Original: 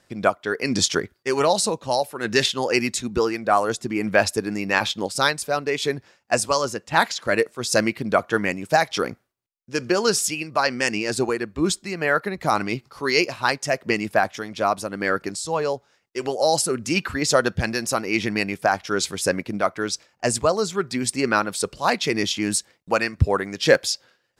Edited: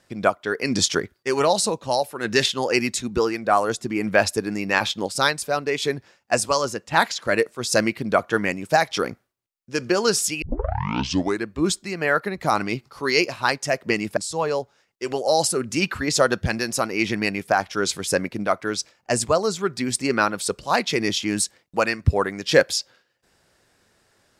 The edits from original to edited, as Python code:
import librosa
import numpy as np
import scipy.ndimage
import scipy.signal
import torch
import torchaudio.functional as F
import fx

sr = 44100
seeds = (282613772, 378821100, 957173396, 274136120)

y = fx.edit(x, sr, fx.tape_start(start_s=10.42, length_s=1.04),
    fx.cut(start_s=14.17, length_s=1.14), tone=tone)